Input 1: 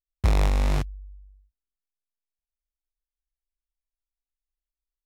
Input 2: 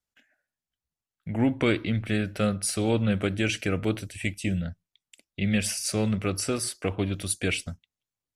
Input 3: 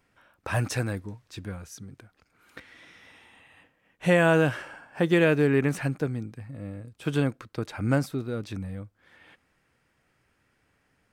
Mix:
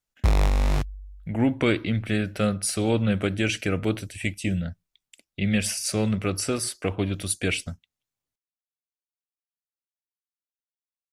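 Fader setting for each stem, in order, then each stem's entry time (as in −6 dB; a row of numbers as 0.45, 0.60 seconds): +0.5 dB, +1.5 dB, muted; 0.00 s, 0.00 s, muted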